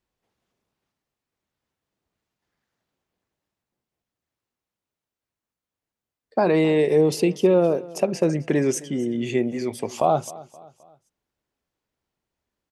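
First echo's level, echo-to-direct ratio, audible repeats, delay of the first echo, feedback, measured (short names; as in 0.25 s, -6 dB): -20.0 dB, -19.0 dB, 3, 0.262 s, 45%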